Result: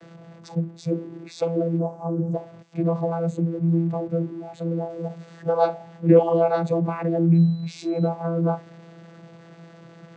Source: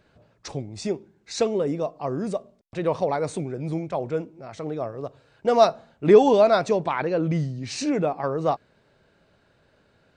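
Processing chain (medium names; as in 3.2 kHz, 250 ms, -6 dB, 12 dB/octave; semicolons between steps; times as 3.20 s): jump at every zero crossing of -28 dBFS; vocoder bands 16, saw 167 Hz; 1.79–2.34 s: high-order bell 2.8 kHz -12.5 dB; spectral noise reduction 9 dB; 4.90–5.49 s: treble shelf 4.7 kHz +9 dB; 7.34–8.07 s: whistle 4 kHz -51 dBFS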